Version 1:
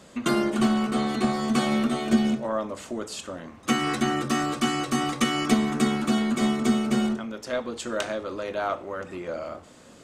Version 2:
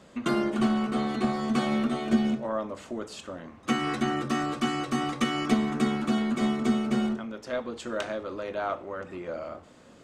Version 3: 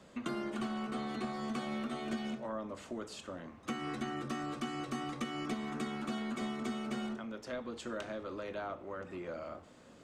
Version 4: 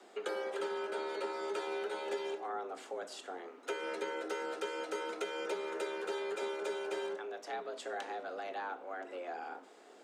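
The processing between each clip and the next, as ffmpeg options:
-af "highshelf=f=5.6k:g=-10,volume=-2.5dB"
-filter_complex "[0:a]acrossover=split=380|810[a][b][c];[a]acompressor=threshold=-35dB:ratio=4[d];[b]acompressor=threshold=-42dB:ratio=4[e];[c]acompressor=threshold=-39dB:ratio=4[f];[d][e][f]amix=inputs=3:normalize=0,volume=-4.5dB"
-af "afreqshift=180"

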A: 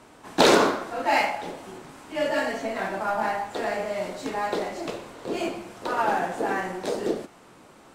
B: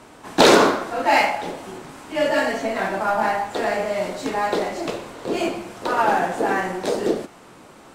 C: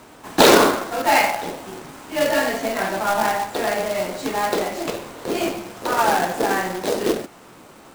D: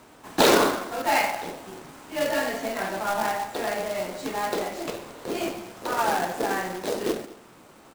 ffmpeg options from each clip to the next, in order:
-af "acontrast=36"
-af "acrusher=bits=2:mode=log:mix=0:aa=0.000001"
-af "aecho=1:1:211:0.106,volume=-6dB"

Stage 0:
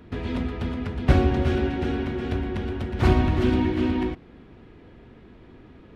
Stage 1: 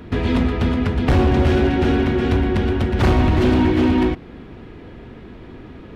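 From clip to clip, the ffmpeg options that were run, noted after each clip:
-filter_complex "[0:a]asplit=2[a][b];[b]alimiter=limit=-15.5dB:level=0:latency=1:release=475,volume=3dB[c];[a][c]amix=inputs=2:normalize=0,asoftclip=type=hard:threshold=-13.5dB,volume=2.5dB"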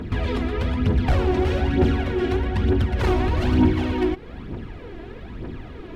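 -af "alimiter=limit=-17.5dB:level=0:latency=1:release=210,aphaser=in_gain=1:out_gain=1:delay=3.1:decay=0.59:speed=1.1:type=triangular"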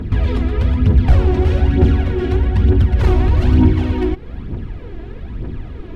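-af "lowshelf=f=180:g=11"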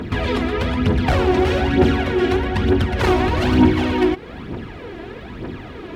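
-af "highpass=f=490:p=1,volume=7.5dB"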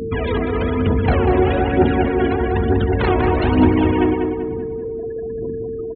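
-filter_complex "[0:a]afftfilt=real='re*gte(hypot(re,im),0.0794)':imag='im*gte(hypot(re,im),0.0794)':win_size=1024:overlap=0.75,asplit=2[a][b];[b]adelay=193,lowpass=f=2.3k:p=1,volume=-4.5dB,asplit=2[c][d];[d]adelay=193,lowpass=f=2.3k:p=1,volume=0.5,asplit=2[e][f];[f]adelay=193,lowpass=f=2.3k:p=1,volume=0.5,asplit=2[g][h];[h]adelay=193,lowpass=f=2.3k:p=1,volume=0.5,asplit=2[i][j];[j]adelay=193,lowpass=f=2.3k:p=1,volume=0.5,asplit=2[k][l];[l]adelay=193,lowpass=f=2.3k:p=1,volume=0.5[m];[a][c][e][g][i][k][m]amix=inputs=7:normalize=0,aeval=exprs='val(0)+0.0708*sin(2*PI*450*n/s)':c=same,volume=-1dB"

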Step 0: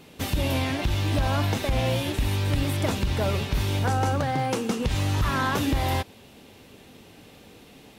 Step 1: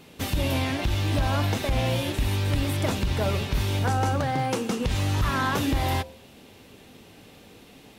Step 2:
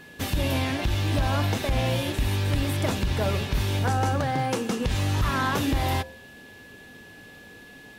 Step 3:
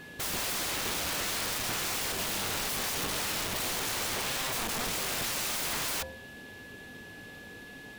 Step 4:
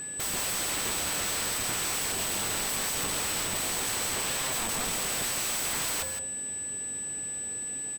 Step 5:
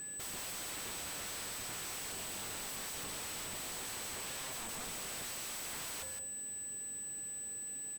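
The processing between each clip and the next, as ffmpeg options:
-af "bandreject=f=75.19:t=h:w=4,bandreject=f=150.38:t=h:w=4,bandreject=f=225.57:t=h:w=4,bandreject=f=300.76:t=h:w=4,bandreject=f=375.95:t=h:w=4,bandreject=f=451.14:t=h:w=4,bandreject=f=526.33:t=h:w=4,bandreject=f=601.52:t=h:w=4,bandreject=f=676.71:t=h:w=4,bandreject=f=751.9:t=h:w=4,bandreject=f=827.09:t=h:w=4,bandreject=f=902.28:t=h:w=4,bandreject=f=977.47:t=h:w=4"
-af "aeval=exprs='val(0)+0.00447*sin(2*PI*1700*n/s)':c=same"
-af "aeval=exprs='(mod(25.1*val(0)+1,2)-1)/25.1':c=same"
-af "aeval=exprs='val(0)+0.0178*sin(2*PI*8000*n/s)':c=same,aecho=1:1:165:0.376"
-af "asoftclip=type=tanh:threshold=-36dB,volume=-4.5dB"

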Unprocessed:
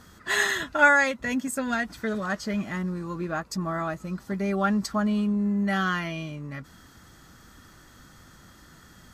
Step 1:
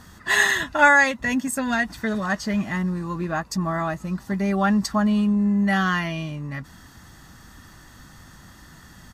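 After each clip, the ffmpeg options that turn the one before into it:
-af "aecho=1:1:1.1:0.34,volume=4dB"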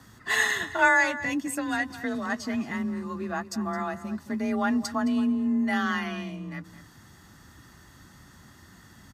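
-filter_complex "[0:a]asplit=2[a][b];[b]adelay=215.7,volume=-14dB,highshelf=f=4k:g=-4.85[c];[a][c]amix=inputs=2:normalize=0,afreqshift=31,volume=-5.5dB"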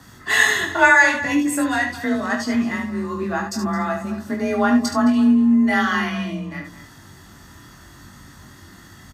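-filter_complex "[0:a]asplit=2[a][b];[b]adelay=21,volume=-5dB[c];[a][c]amix=inputs=2:normalize=0,asplit=2[d][e];[e]aecho=0:1:24|72:0.398|0.447[f];[d][f]amix=inputs=2:normalize=0,volume=5.5dB"

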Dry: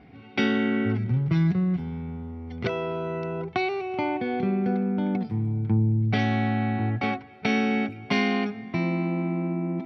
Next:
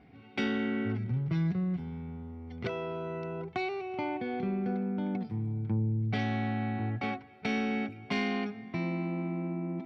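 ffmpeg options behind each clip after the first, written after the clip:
-af "asoftclip=type=tanh:threshold=-13.5dB,volume=-6.5dB"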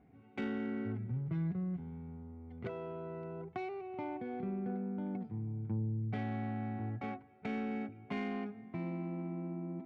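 -af "adynamicsmooth=sensitivity=1:basefreq=1.8k,volume=-6dB"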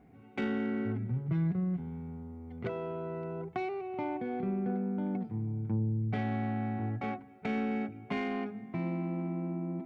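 -af "equalizer=f=92:w=6.6:g=-6.5,bandreject=f=68.46:t=h:w=4,bandreject=f=136.92:t=h:w=4,bandreject=f=205.38:t=h:w=4,bandreject=f=273.84:t=h:w=4,bandreject=f=342.3:t=h:w=4,volume=5.5dB"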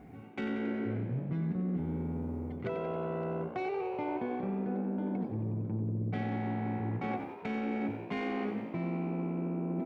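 -filter_complex "[0:a]areverse,acompressor=threshold=-40dB:ratio=6,areverse,asplit=9[a][b][c][d][e][f][g][h][i];[b]adelay=91,afreqshift=63,volume=-10dB[j];[c]adelay=182,afreqshift=126,volume=-13.9dB[k];[d]adelay=273,afreqshift=189,volume=-17.8dB[l];[e]adelay=364,afreqshift=252,volume=-21.6dB[m];[f]adelay=455,afreqshift=315,volume=-25.5dB[n];[g]adelay=546,afreqshift=378,volume=-29.4dB[o];[h]adelay=637,afreqshift=441,volume=-33.3dB[p];[i]adelay=728,afreqshift=504,volume=-37.1dB[q];[a][j][k][l][m][n][o][p][q]amix=inputs=9:normalize=0,volume=7.5dB"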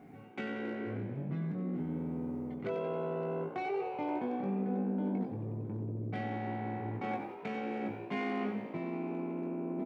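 -filter_complex "[0:a]asoftclip=type=hard:threshold=-26dB,highpass=130,asplit=2[a][b];[b]adelay=20,volume=-5dB[c];[a][c]amix=inputs=2:normalize=0,volume=-2dB"

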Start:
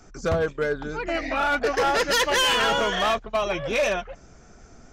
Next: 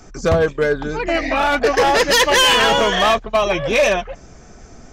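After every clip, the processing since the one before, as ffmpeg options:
-af "bandreject=f=1.4k:w=11,volume=8dB"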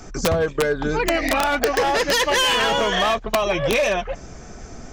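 -af "acompressor=threshold=-20dB:ratio=12,aeval=exprs='(mod(5.31*val(0)+1,2)-1)/5.31':c=same,volume=3.5dB"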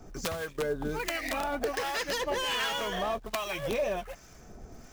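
-filter_complex "[0:a]acrusher=bits=4:mode=log:mix=0:aa=0.000001,acrossover=split=1000[a][b];[a]aeval=exprs='val(0)*(1-0.7/2+0.7/2*cos(2*PI*1.3*n/s))':c=same[c];[b]aeval=exprs='val(0)*(1-0.7/2-0.7/2*cos(2*PI*1.3*n/s))':c=same[d];[c][d]amix=inputs=2:normalize=0,volume=-8.5dB"

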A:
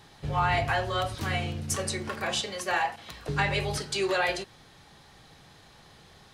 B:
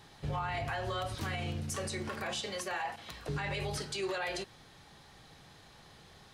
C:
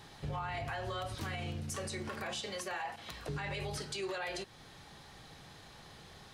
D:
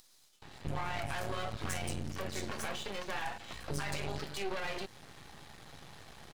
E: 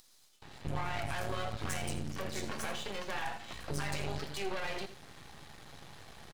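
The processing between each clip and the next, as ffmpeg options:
-af "alimiter=level_in=1dB:limit=-24dB:level=0:latency=1:release=59,volume=-1dB,volume=-2.5dB"
-af "acompressor=threshold=-48dB:ratio=1.5,volume=2.5dB"
-filter_complex "[0:a]acompressor=mode=upward:threshold=-52dB:ratio=2.5,acrossover=split=4600[a][b];[a]adelay=420[c];[c][b]amix=inputs=2:normalize=0,aeval=exprs='max(val(0),0)':c=same,volume=5.5dB"
-af "aecho=1:1:82:0.251"

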